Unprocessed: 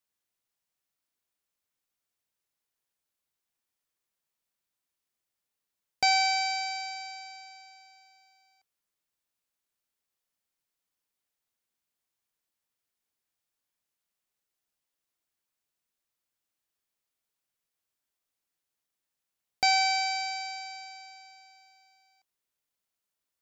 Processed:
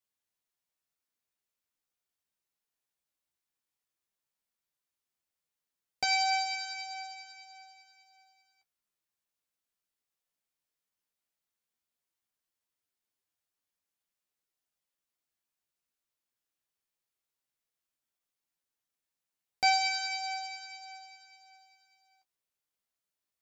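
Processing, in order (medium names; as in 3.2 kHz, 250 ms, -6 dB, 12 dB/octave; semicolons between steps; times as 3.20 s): flange 0.15 Hz, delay 9.7 ms, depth 7.2 ms, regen +22%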